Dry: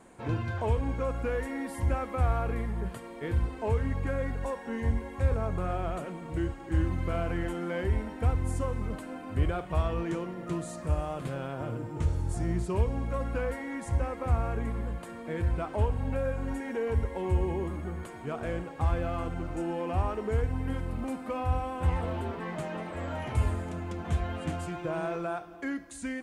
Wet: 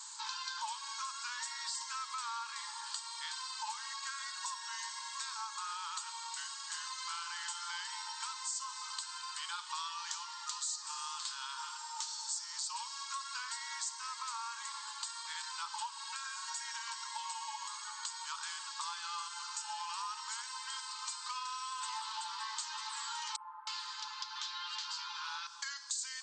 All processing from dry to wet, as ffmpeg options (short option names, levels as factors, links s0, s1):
-filter_complex "[0:a]asettb=1/sr,asplit=3[s0][s1][s2];[s0]atrim=end=23.364[s3];[s1]atrim=start=23.36:end=25.47,asetpts=PTS-STARTPTS,afade=t=in:d=0.004:c=qsin,afade=t=out:st=2.106:d=0.004:c=qsin,lowpass=f=5000:w=0.5412,lowpass=f=5000:w=1.3066,acrossover=split=1000[s4][s5];[s5]adelay=310[s6];[s4][s6]amix=inputs=2:normalize=0,atrim=end_sample=93051[s7];[s2]atrim=start=25.466[s8];[s3][s7]acrossfade=d=0.004:c1=hsin:c2=qsin[s9];[s9][s8]acrossfade=d=0.004:c1=qsin:c2=hsin,afftfilt=real='re*between(b*sr/4096,840,8400)':imag='im*between(b*sr/4096,840,8400)':win_size=4096:overlap=0.75,highshelf=f=3200:t=q:w=3:g=13,acompressor=threshold=0.00501:ratio=3,volume=2.11"